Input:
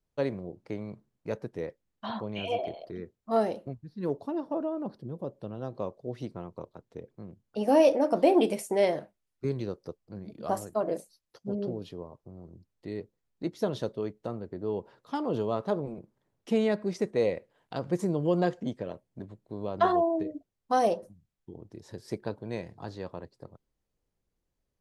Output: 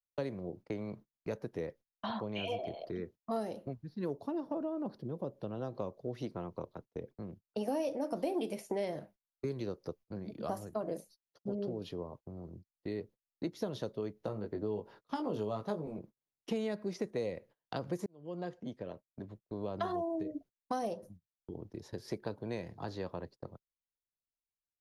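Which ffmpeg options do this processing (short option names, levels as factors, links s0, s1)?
-filter_complex "[0:a]asettb=1/sr,asplit=3[s0][s1][s2];[s0]atrim=end=14.224[s3];[s1]atrim=start=14.22:end=15.97,asetpts=PTS-STARTPTS,afade=t=in:d=0.004:c=qsin,afade=t=out:st=1.746:d=0.004:c=qsin,asplit=2[s4][s5];[s5]adelay=19,volume=0.631[s6];[s4][s6]amix=inputs=2:normalize=0,atrim=end_sample=77175[s7];[s2]atrim=start=15.966[s8];[s3][s7]acrossfade=d=0.004:c1=hsin:c2=qsin[s9];[s9][s8]acrossfade=d=0.004:c1=qsin:c2=hsin,asplit=2[s10][s11];[s10]atrim=end=18.06,asetpts=PTS-STARTPTS,afade=t=out:st=18.056:d=0.004:c=hsin[s12];[s11]atrim=start=18.06,asetpts=PTS-STARTPTS,afade=t=in:d=1.9[s13];[s12][s13]concat=n=2:v=0:a=1,agate=range=0.0398:threshold=0.00282:ratio=16:detection=peak,equalizer=f=8000:t=o:w=0.23:g=-11.5,acrossover=split=240|5800[s14][s15][s16];[s14]acompressor=threshold=0.00562:ratio=4[s17];[s15]acompressor=threshold=0.0126:ratio=4[s18];[s16]acompressor=threshold=0.00112:ratio=4[s19];[s17][s18][s19]amix=inputs=3:normalize=0,volume=1.19"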